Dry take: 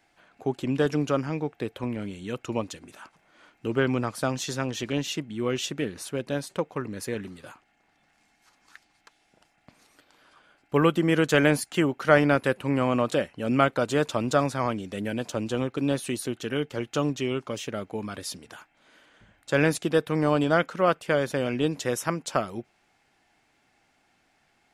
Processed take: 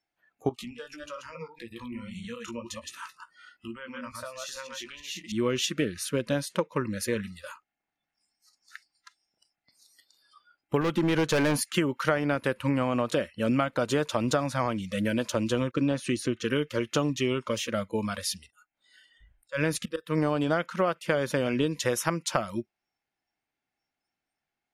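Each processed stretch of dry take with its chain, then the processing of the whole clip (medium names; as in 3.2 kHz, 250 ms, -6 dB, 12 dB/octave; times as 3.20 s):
0.49–5.32 s: chunks repeated in reverse 110 ms, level -4 dB + compression 5:1, threshold -37 dBFS + doubling 17 ms -9 dB
10.81–11.56 s: treble shelf 10 kHz -9.5 dB + overload inside the chain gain 20.5 dB
15.71–16.45 s: expander -48 dBFS + low-pass 6.8 kHz + peaking EQ 3.7 kHz -4.5 dB 0.55 oct
18.40–20.18 s: slow attack 314 ms + bass shelf 86 Hz +3 dB
whole clip: band-stop 7.7 kHz, Q 10; spectral noise reduction 25 dB; compression 12:1, threshold -26 dBFS; trim +4.5 dB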